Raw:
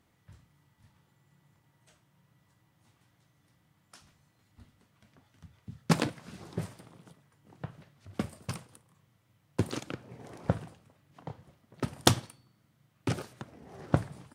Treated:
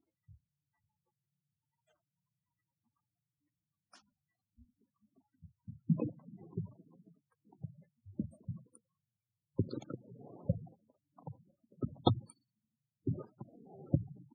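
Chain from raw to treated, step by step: spectral gate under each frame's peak -10 dB strong; spectral noise reduction 18 dB; trim -3.5 dB

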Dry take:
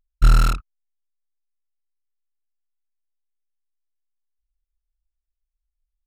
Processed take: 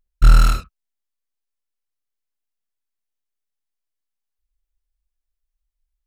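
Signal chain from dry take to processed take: gated-style reverb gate 90 ms rising, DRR 6.5 dB; trim +1.5 dB

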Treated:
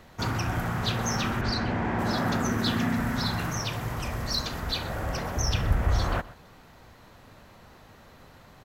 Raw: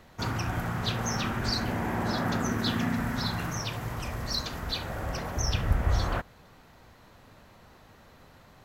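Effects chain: 1.41–1.99 s: low-pass 4.1 kHz 12 dB/octave; in parallel at -9 dB: hard clipper -27.5 dBFS, distortion -9 dB; on the sum: delay 125 ms -19.5 dB

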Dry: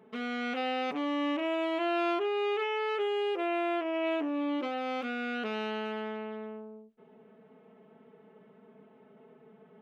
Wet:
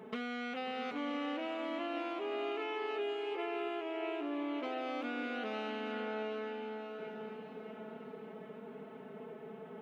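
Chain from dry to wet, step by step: bass shelf 73 Hz -9 dB; compression 6:1, threshold -46 dBFS, peak gain reduction 19 dB; on a send: echo that smears into a reverb 640 ms, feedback 49%, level -6 dB; on the sum: trim +8 dB

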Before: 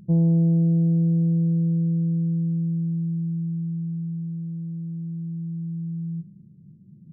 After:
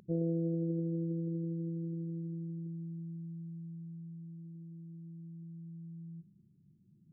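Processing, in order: resonances exaggerated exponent 2; resonant low shelf 280 Hz -14 dB, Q 1.5

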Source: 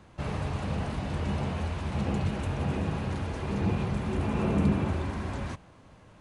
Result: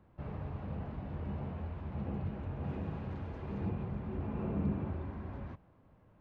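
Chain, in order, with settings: tape spacing loss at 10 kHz 42 dB, from 2.63 s at 10 kHz 29 dB, from 3.68 s at 10 kHz 41 dB; trim -8 dB

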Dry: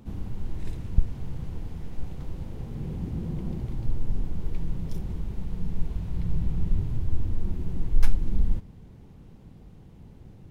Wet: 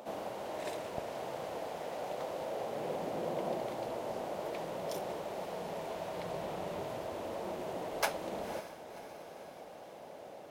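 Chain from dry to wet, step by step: resonant high-pass 610 Hz, resonance Q 4.9; echo that smears into a reverb 539 ms, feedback 60%, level -14 dB; trim +7 dB

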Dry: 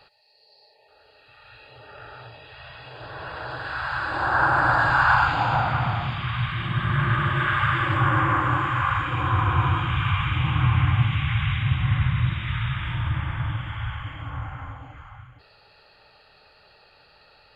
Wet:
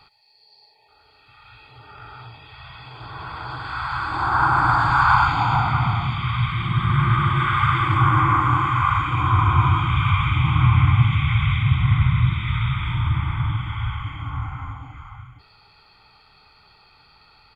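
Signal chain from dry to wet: comb 0.9 ms, depth 78%

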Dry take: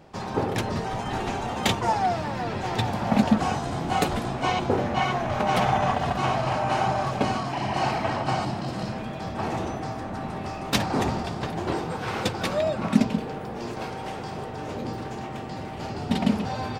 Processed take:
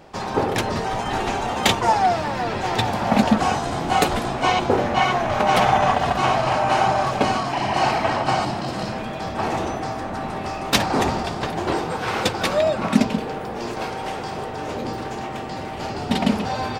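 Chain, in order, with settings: peaking EQ 130 Hz -6 dB 2.2 oct; trim +6.5 dB

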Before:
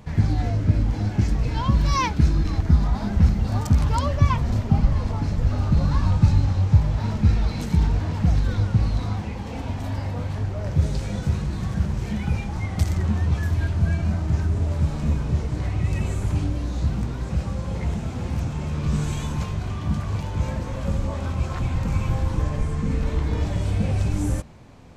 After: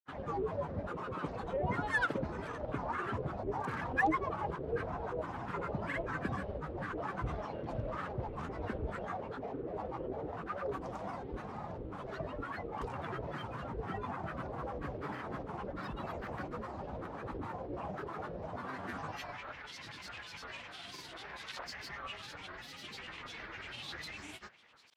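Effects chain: band-pass sweep 720 Hz -> 2.6 kHz, 18.76–19.57 s; granulator, pitch spread up and down by 12 st; trim +2.5 dB

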